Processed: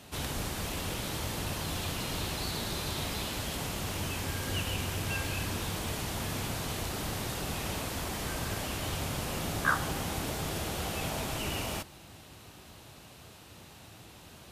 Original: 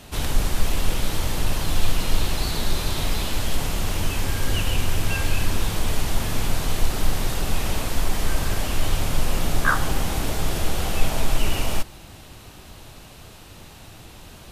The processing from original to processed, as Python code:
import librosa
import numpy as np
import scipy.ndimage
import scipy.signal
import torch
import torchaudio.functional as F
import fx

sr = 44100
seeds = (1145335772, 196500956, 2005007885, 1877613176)

y = scipy.signal.sosfilt(scipy.signal.butter(2, 78.0, 'highpass', fs=sr, output='sos'), x)
y = y * 10.0 ** (-6.5 / 20.0)